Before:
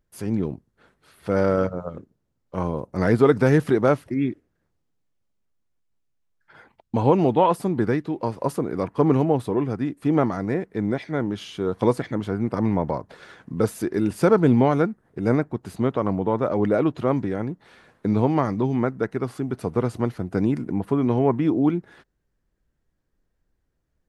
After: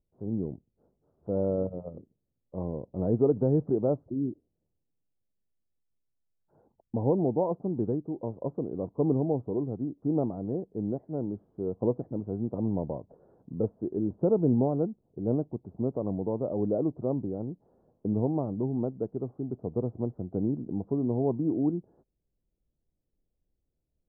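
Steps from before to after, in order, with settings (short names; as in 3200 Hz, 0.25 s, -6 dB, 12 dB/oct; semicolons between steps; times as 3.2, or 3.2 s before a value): inverse Chebyshev low-pass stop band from 2400 Hz, stop band 60 dB; gain -7 dB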